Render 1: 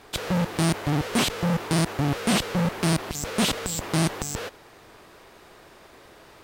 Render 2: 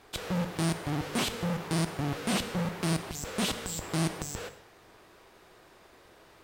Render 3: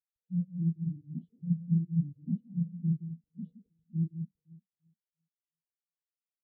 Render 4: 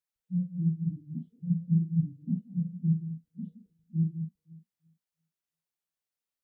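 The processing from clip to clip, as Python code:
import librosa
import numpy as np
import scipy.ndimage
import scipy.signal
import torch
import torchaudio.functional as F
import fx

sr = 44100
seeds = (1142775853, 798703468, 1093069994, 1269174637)

y1 = fx.rev_gated(x, sr, seeds[0], gate_ms=270, shape='falling', drr_db=10.0)
y1 = y1 * 10.0 ** (-7.0 / 20.0)
y2 = fx.env_phaser(y1, sr, low_hz=580.0, high_hz=1700.0, full_db=-25.5)
y2 = fx.echo_alternate(y2, sr, ms=172, hz=1400.0, feedback_pct=79, wet_db=-3.0)
y2 = fx.spectral_expand(y2, sr, expansion=4.0)
y2 = y2 * 10.0 ** (-2.5 / 20.0)
y3 = fx.doubler(y2, sr, ms=38.0, db=-7.0)
y3 = y3 * 10.0 ** (2.0 / 20.0)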